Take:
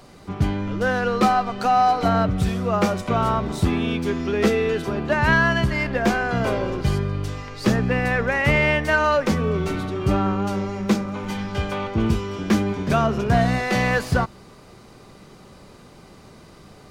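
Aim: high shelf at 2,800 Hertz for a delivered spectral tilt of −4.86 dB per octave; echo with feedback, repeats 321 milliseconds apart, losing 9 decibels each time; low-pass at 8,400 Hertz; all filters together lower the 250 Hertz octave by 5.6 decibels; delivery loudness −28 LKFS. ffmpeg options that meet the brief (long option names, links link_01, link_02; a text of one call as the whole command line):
ffmpeg -i in.wav -af "lowpass=8400,equalizer=frequency=250:width_type=o:gain=-8,highshelf=frequency=2800:gain=6.5,aecho=1:1:321|642|963|1284:0.355|0.124|0.0435|0.0152,volume=-6.5dB" out.wav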